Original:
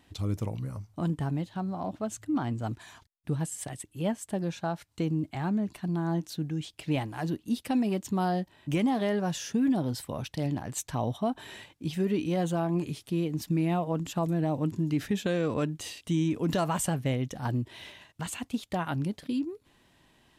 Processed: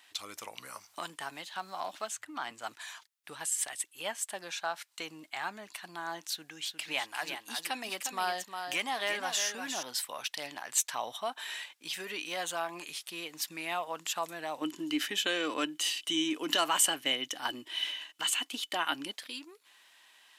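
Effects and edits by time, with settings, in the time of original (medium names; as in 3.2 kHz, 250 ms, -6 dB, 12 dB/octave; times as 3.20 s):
0.57–2.51 s: three bands compressed up and down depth 70%
6.30–9.83 s: delay 356 ms -7 dB
14.61–19.12 s: small resonant body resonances 300/3000 Hz, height 16 dB
whole clip: high-pass 1.3 kHz 12 dB/octave; trim +7 dB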